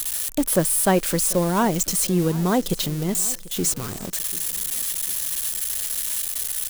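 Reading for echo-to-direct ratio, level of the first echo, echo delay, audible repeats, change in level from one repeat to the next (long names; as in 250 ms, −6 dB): −19.0 dB, −20.0 dB, 741 ms, 3, −7.5 dB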